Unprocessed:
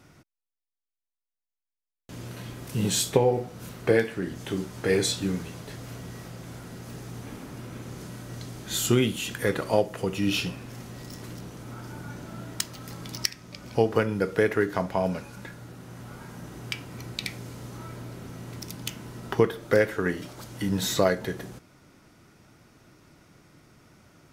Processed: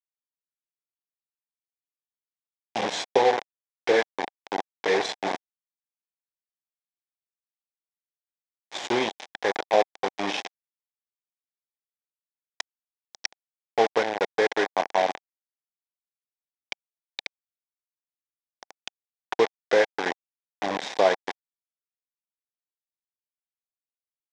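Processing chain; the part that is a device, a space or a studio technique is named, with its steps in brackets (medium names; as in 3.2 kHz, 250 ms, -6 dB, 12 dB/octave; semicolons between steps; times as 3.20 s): hand-held game console (bit crusher 4-bit; cabinet simulation 460–4800 Hz, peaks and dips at 780 Hz +6 dB, 1.3 kHz -9 dB, 2.8 kHz -7 dB, 4.4 kHz -8 dB); trim +3 dB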